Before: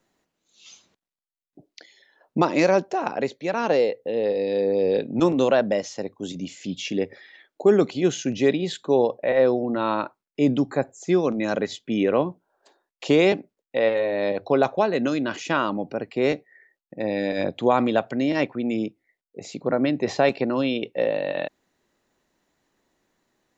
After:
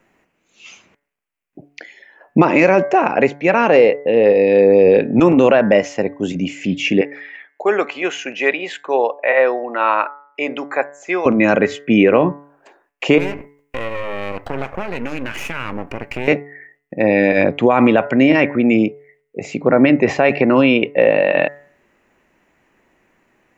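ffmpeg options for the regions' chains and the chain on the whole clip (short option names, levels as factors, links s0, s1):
-filter_complex "[0:a]asettb=1/sr,asplit=3[s0][s1][s2];[s0]atrim=end=7.014[s3];[s1]atrim=start=7.01:end=11.26,asetpts=PTS-STARTPTS,afade=t=in:d=0.004:c=qsin,afade=t=out:st=4.246:d=0.004:c=qsin,highpass=760,highshelf=f=3800:g=-6[s4];[s2]atrim=start=11.256[s5];[s3][s4]acrossfade=d=0.004:c1=hsin:c2=qsin[s6];[s6][s5]acrossfade=d=0.004:c1=qsin:c2=hsin,asettb=1/sr,asplit=3[s7][s8][s9];[s7]atrim=end=13.184[s10];[s8]atrim=start=13.18:end=16.28,asetpts=PTS-STARTPTS,afade=t=in:d=0.004:c=qsin,afade=t=out:st=3.096:d=0.004:c=qsin,highshelf=f=2300:g=11,acompressor=threshold=0.0282:ratio=4:attack=3.2:release=140:knee=1:detection=peak,aeval=exprs='max(val(0),0)':c=same[s11];[s9]atrim=start=16.276[s12];[s10][s11]acrossfade=d=0.004:c1=hsin:c2=qsin[s13];[s13][s12]acrossfade=d=0.004:c1=qsin:c2=hsin,highshelf=f=3100:t=q:w=3:g=-7,bandreject=f=143.4:t=h:w=4,bandreject=f=286.8:t=h:w=4,bandreject=f=430.2:t=h:w=4,bandreject=f=573.6:t=h:w=4,bandreject=f=717:t=h:w=4,bandreject=f=860.4:t=h:w=4,bandreject=f=1003.8:t=h:w=4,bandreject=f=1147.2:t=h:w=4,bandreject=f=1290.6:t=h:w=4,bandreject=f=1434:t=h:w=4,bandreject=f=1577.4:t=h:w=4,bandreject=f=1720.8:t=h:w=4,bandreject=f=1864.2:t=h:w=4,bandreject=f=2007.6:t=h:w=4,bandreject=f=2151:t=h:w=4,alimiter=level_in=4.22:limit=0.891:release=50:level=0:latency=1,volume=0.891"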